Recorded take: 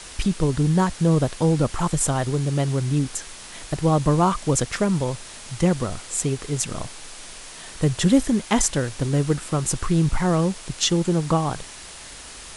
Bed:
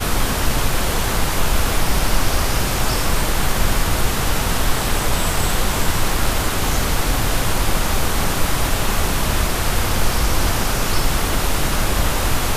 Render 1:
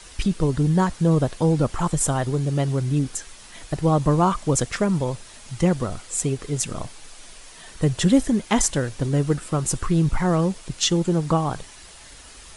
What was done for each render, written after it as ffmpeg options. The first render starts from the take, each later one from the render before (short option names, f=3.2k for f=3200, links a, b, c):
-af "afftdn=nr=7:nf=-40"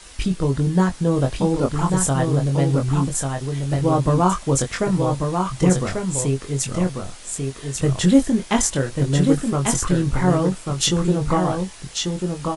-filter_complex "[0:a]asplit=2[a][b];[b]adelay=22,volume=-5dB[c];[a][c]amix=inputs=2:normalize=0,aecho=1:1:1142:0.596"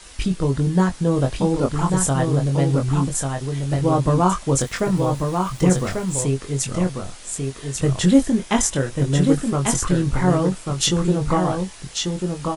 -filter_complex "[0:a]asettb=1/sr,asplit=3[a][b][c];[a]atrim=end=4.604[d];[b]atrim=start=4.6:end=6.23,asetpts=PTS-STARTPTS,afade=t=in:d=0.004:c=qsin,afade=t=out:st=1.626:d=0.004:c=qsin,aeval=exprs='val(0)*gte(abs(val(0)),0.0126)':c=same[e];[c]atrim=start=6.226[f];[d][e]acrossfade=d=0.004:c1=hsin:c2=qsin[g];[g][f]acrossfade=d=0.004:c1=qsin:c2=hsin,asettb=1/sr,asplit=3[h][i][j];[h]atrim=end=8.384[k];[i]atrim=start=8.38:end=9.22,asetpts=PTS-STARTPTS,afade=t=in:d=0.004:c=qsin,afade=t=out:st=0.836:d=0.004:c=qsin,bandreject=f=4.4k:w=12[l];[j]atrim=start=9.216[m];[k][l]acrossfade=d=0.004:c1=hsin:c2=qsin[n];[n][m]acrossfade=d=0.004:c1=qsin:c2=hsin"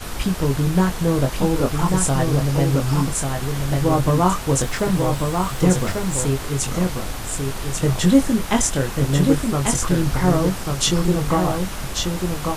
-filter_complex "[1:a]volume=-11dB[a];[0:a][a]amix=inputs=2:normalize=0"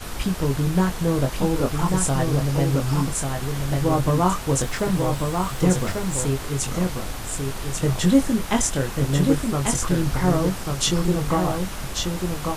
-af "volume=-2.5dB"